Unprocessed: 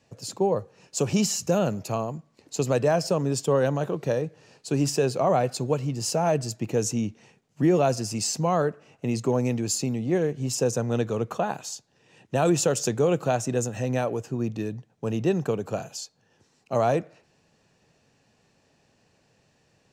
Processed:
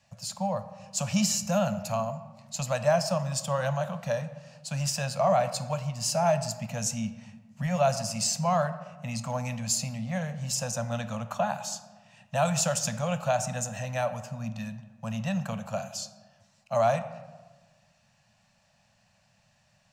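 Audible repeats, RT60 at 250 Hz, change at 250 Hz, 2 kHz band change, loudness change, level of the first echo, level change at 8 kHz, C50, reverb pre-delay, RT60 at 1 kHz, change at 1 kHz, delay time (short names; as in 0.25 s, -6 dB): none, 1.5 s, -6.0 dB, 0.0 dB, -3.5 dB, none, 0.0 dB, 13.0 dB, 3 ms, 1.2 s, 0.0 dB, none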